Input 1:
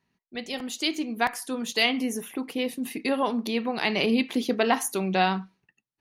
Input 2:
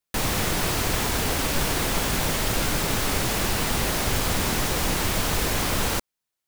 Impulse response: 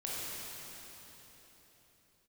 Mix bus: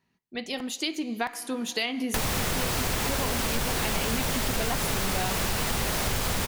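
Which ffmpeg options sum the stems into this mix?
-filter_complex "[0:a]volume=-6.5dB,asplit=2[link_01][link_02];[link_02]volume=-21.5dB[link_03];[1:a]equalizer=frequency=310:width_type=o:width=0.33:gain=-5.5,adelay=2000,volume=0dB[link_04];[2:a]atrim=start_sample=2205[link_05];[link_03][link_05]afir=irnorm=-1:irlink=0[link_06];[link_01][link_04][link_06]amix=inputs=3:normalize=0,acontrast=81,acompressor=threshold=-26dB:ratio=4"

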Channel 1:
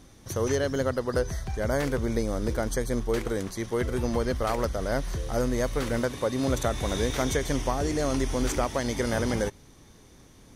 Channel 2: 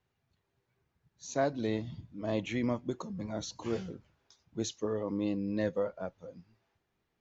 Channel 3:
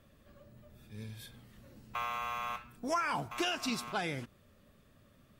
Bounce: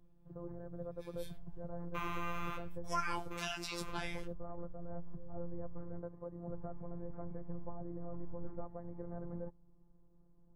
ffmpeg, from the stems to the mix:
ffmpeg -i stem1.wav -i stem2.wav -i stem3.wav -filter_complex "[0:a]lowpass=frequency=1100:width=0.5412,lowpass=frequency=1100:width=1.3066,aemphasis=mode=reproduction:type=bsi,volume=-17dB[link_01];[2:a]highpass=frequency=750:width=0.5412,highpass=frequency=750:width=1.3066,agate=range=-18dB:threshold=-58dB:ratio=16:detection=peak,flanger=delay=17:depth=5.5:speed=1.1,volume=1.5dB[link_02];[link_01][link_02]amix=inputs=2:normalize=0,afftfilt=real='hypot(re,im)*cos(PI*b)':imag='0':win_size=1024:overlap=0.75" out.wav

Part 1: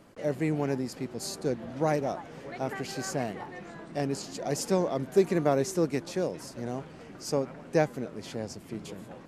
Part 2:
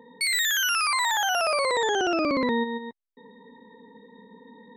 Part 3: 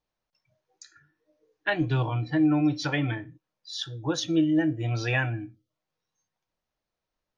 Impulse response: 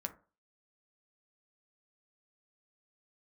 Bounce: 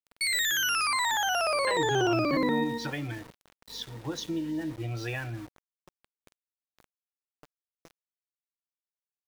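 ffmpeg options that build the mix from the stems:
-filter_complex "[0:a]agate=range=-8dB:threshold=-33dB:ratio=16:detection=peak,acompressor=threshold=-33dB:ratio=16,adelay=100,volume=-16.5dB[link_01];[1:a]volume=-3dB[link_02];[2:a]acompressor=threshold=-26dB:ratio=6,aeval=exprs='val(0)+0.002*(sin(2*PI*50*n/s)+sin(2*PI*2*50*n/s)/2+sin(2*PI*3*50*n/s)/3+sin(2*PI*4*50*n/s)/4+sin(2*PI*5*50*n/s)/5)':channel_layout=same,volume=-4.5dB,asplit=2[link_03][link_04];[link_04]apad=whole_len=413273[link_05];[link_01][link_05]sidechaincompress=threshold=-56dB:ratio=4:attack=8.2:release=111[link_06];[link_06][link_02][link_03]amix=inputs=3:normalize=0,adynamicequalizer=threshold=0.00316:dfrequency=360:dqfactor=7.5:tfrequency=360:tqfactor=7.5:attack=5:release=100:ratio=0.375:range=2.5:mode=boostabove:tftype=bell,aeval=exprs='val(0)*gte(abs(val(0)),0.00668)':channel_layout=same"

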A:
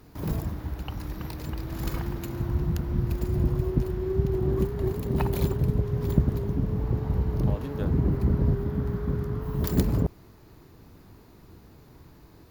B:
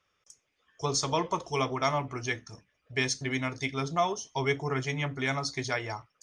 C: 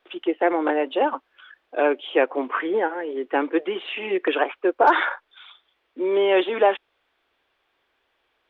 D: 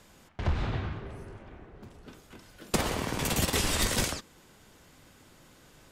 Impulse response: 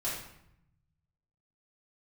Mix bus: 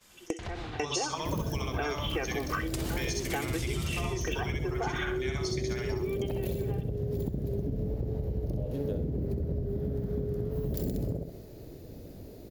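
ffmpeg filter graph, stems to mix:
-filter_complex "[0:a]lowshelf=frequency=770:width_type=q:width=3:gain=10,adelay=1100,volume=-6dB,asplit=2[link_01][link_02];[link_02]volume=-11.5dB[link_03];[1:a]volume=-2.5dB,asplit=3[link_04][link_05][link_06];[link_05]volume=-6dB[link_07];[2:a]aecho=1:1:2.6:0.8,volume=-6dB,asplit=2[link_08][link_09];[link_09]volume=-20dB[link_10];[3:a]agate=range=-33dB:threshold=-51dB:ratio=3:detection=peak,acompressor=threshold=-54dB:ratio=1.5,volume=-0.5dB[link_11];[link_06]apad=whole_len=374828[link_12];[link_08][link_12]sidechaingate=range=-33dB:threshold=-60dB:ratio=16:detection=peak[link_13];[link_04][link_11]amix=inputs=2:normalize=0,acompressor=threshold=-34dB:ratio=3,volume=0dB[link_14];[link_01][link_13]amix=inputs=2:normalize=0,acompressor=threshold=-21dB:ratio=6,volume=0dB[link_15];[link_03][link_07][link_10]amix=inputs=3:normalize=0,aecho=0:1:65|130|195|260|325:1|0.34|0.116|0.0393|0.0134[link_16];[link_14][link_15][link_16]amix=inputs=3:normalize=0,highshelf=frequency=2200:gain=10.5,acompressor=threshold=-28dB:ratio=10"

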